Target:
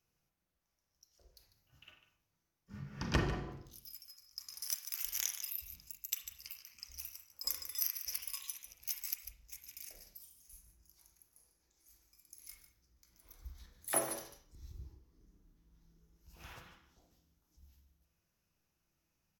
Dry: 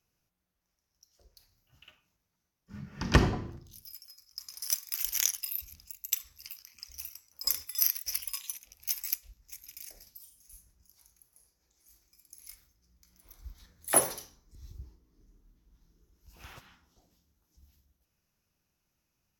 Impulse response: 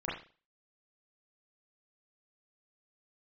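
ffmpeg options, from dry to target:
-filter_complex "[0:a]aecho=1:1:147:0.237,asplit=2[s0][s1];[1:a]atrim=start_sample=2205[s2];[s1][s2]afir=irnorm=-1:irlink=0,volume=0.473[s3];[s0][s3]amix=inputs=2:normalize=0,acompressor=threshold=0.02:ratio=1.5,volume=0.501"

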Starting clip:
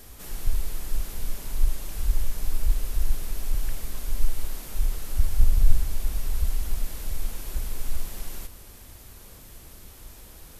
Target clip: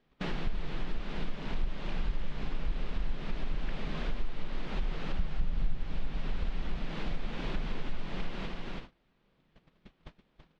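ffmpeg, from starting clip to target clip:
-filter_complex "[0:a]lowpass=f=3500:w=0.5412,lowpass=f=3500:w=1.3066,lowshelf=f=120:t=q:w=3:g=-8,agate=range=0.02:threshold=0.00562:ratio=16:detection=peak,asplit=2[s0][s1];[s1]aecho=0:1:330:0.376[s2];[s0][s2]amix=inputs=2:normalize=0,acompressor=threshold=0.00562:ratio=3,volume=4.73"

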